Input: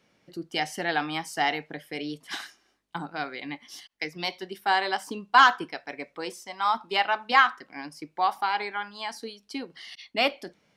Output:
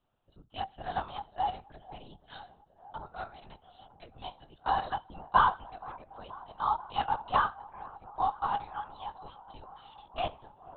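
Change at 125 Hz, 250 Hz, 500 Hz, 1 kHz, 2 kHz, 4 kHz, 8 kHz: -1.5 dB, -13.5 dB, -9.0 dB, -4.5 dB, -14.0 dB, -14.0 dB, under -35 dB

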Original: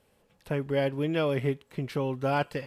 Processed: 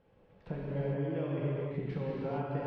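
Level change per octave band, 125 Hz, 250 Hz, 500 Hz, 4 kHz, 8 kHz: -3.0 dB, -5.5 dB, -7.5 dB, -17.0 dB, n/a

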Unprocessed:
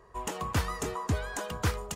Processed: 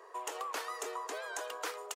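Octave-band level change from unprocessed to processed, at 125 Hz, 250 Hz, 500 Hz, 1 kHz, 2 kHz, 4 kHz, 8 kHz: under -40 dB, -18.0 dB, -4.5 dB, -3.5 dB, -4.0 dB, -4.0 dB, -4.0 dB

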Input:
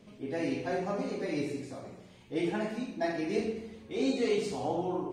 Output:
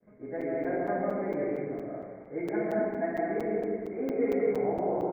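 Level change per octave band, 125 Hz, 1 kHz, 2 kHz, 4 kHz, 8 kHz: -1.0 dB, +3.0 dB, 0.0 dB, under -15 dB, under -15 dB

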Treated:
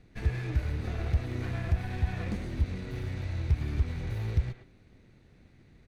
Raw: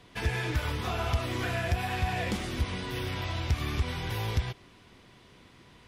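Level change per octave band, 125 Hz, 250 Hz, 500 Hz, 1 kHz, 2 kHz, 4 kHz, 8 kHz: +1.5 dB, -1.5 dB, -6.5 dB, -11.5 dB, -9.0 dB, -13.0 dB, under -10 dB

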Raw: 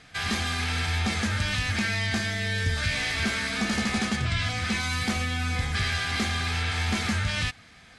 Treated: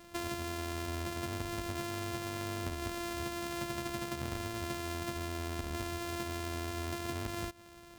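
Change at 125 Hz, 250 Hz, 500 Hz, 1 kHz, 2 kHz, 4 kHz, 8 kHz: -12.5, -8.5, -1.0, -7.0, -16.5, -15.0, -9.5 dB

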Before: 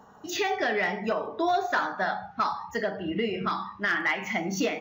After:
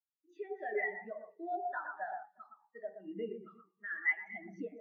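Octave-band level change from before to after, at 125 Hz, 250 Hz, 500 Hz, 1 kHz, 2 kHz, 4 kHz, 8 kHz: -20.5 dB, -16.5 dB, -12.0 dB, -14.0 dB, -9.5 dB, under -30 dB, n/a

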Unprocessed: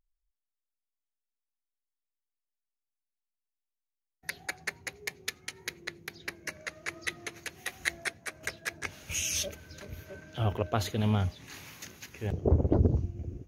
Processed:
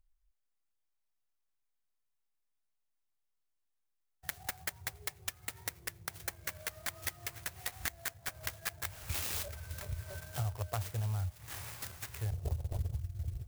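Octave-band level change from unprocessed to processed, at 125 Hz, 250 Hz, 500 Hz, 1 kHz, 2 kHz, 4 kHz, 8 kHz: -6.0, -19.5, -13.0, -6.0, -7.0, -5.5, -5.0 dB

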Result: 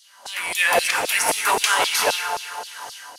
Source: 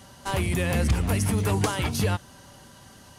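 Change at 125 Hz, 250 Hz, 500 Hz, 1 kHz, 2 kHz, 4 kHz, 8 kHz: -26.0, -12.5, +4.5, +10.5, +13.0, +12.5, +11.0 dB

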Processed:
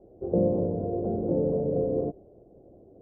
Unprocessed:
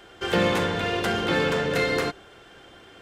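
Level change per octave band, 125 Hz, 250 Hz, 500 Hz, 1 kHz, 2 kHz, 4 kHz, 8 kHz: -0.5 dB, 0.0 dB, -1.0 dB, -13.0 dB, under -40 dB, under -40 dB, under -40 dB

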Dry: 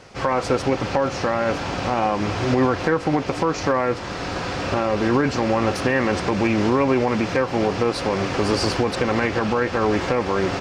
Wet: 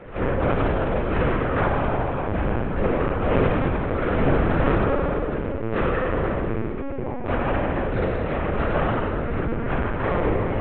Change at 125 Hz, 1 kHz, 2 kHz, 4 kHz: +2.0, -3.5, -3.5, -12.0 dB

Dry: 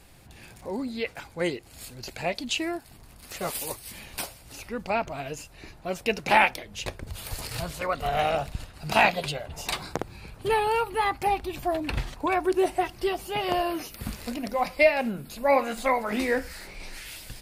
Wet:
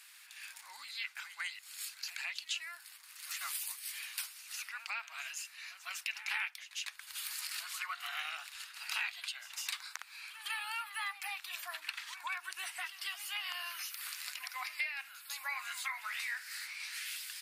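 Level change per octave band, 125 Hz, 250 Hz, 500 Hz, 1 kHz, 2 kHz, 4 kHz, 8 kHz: under -40 dB, under -40 dB, -39.5 dB, -19.5 dB, -8.5 dB, -5.0 dB, -3.0 dB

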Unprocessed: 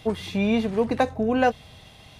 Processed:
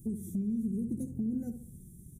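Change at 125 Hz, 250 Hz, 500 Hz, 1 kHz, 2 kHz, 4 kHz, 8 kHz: -6.0 dB, -7.0 dB, -25.0 dB, under -40 dB, under -40 dB, under -40 dB, n/a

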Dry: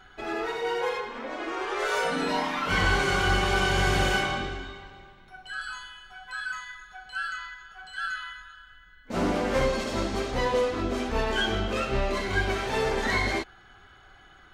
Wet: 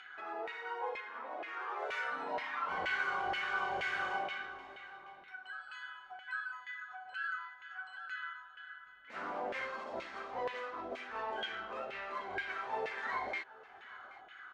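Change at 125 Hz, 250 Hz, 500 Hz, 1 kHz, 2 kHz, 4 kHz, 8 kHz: -30.5 dB, -22.0 dB, -15.0 dB, -8.5 dB, -9.0 dB, -15.5 dB, under -20 dB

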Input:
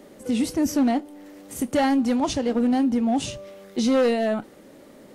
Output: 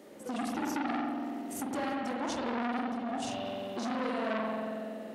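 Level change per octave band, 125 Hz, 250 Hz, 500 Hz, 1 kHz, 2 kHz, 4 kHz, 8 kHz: -10.0, -12.5, -11.0, -5.5, -4.5, -9.5, -10.5 dB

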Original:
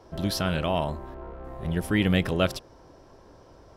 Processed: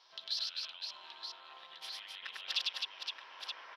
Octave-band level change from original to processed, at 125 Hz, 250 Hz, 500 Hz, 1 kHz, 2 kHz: under -40 dB, under -40 dB, -32.5 dB, -17.0 dB, -12.0 dB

